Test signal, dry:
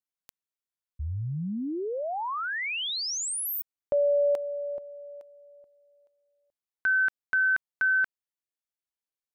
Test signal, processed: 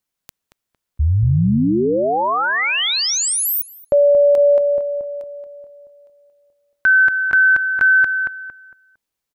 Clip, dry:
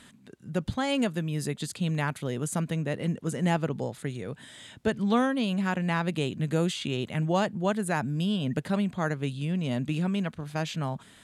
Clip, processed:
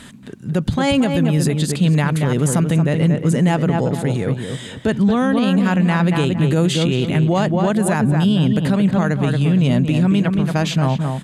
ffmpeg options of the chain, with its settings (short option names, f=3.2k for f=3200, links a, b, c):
-filter_complex "[0:a]lowshelf=f=270:g=5,asplit=2[a][b];[b]adelay=228,lowpass=f=2k:p=1,volume=-6dB,asplit=2[c][d];[d]adelay=228,lowpass=f=2k:p=1,volume=0.32,asplit=2[e][f];[f]adelay=228,lowpass=f=2k:p=1,volume=0.32,asplit=2[g][h];[h]adelay=228,lowpass=f=2k:p=1,volume=0.32[i];[c][e][g][i]amix=inputs=4:normalize=0[j];[a][j]amix=inputs=2:normalize=0,alimiter=level_in=19.5dB:limit=-1dB:release=50:level=0:latency=1,volume=-7.5dB"